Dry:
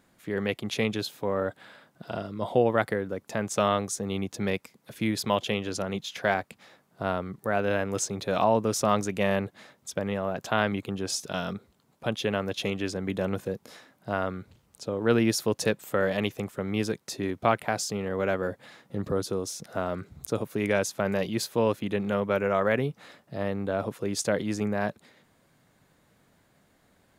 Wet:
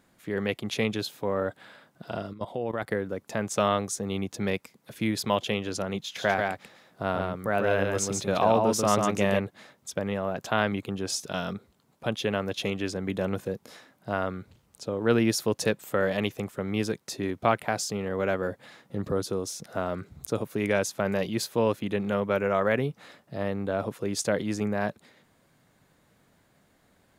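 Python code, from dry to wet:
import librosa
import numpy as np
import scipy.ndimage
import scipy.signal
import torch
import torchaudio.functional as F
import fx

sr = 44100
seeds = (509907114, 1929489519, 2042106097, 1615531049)

y = fx.level_steps(x, sr, step_db=15, at=(2.33, 2.91))
y = fx.echo_single(y, sr, ms=141, db=-3.5, at=(6.15, 9.38), fade=0.02)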